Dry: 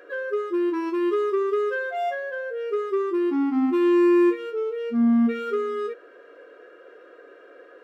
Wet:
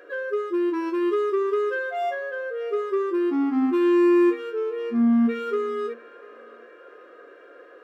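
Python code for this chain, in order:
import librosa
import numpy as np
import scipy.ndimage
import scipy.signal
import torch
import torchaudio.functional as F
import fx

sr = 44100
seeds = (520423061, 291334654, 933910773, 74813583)

y = fx.echo_banded(x, sr, ms=690, feedback_pct=74, hz=1400.0, wet_db=-18.5)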